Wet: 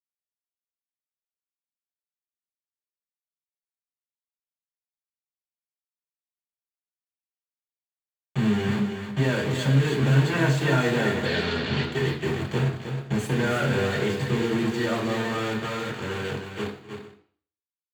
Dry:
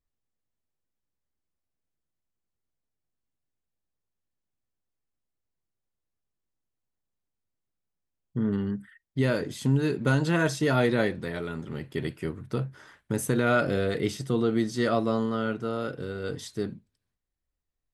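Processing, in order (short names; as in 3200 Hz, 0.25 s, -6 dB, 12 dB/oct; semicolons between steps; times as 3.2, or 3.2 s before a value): ending faded out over 5.53 s; compressor 2:1, threshold -39 dBFS, peak gain reduction 11.5 dB; bit-crush 7-bit; one-sided clip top -31.5 dBFS; 11.25–11.83 synth low-pass 4300 Hz, resonance Q 2.8; tapped delay 0.248/0.314/0.439 s -19/-7/-18.5 dB; reverb RT60 0.50 s, pre-delay 3 ms, DRR -3 dB; gain -1.5 dB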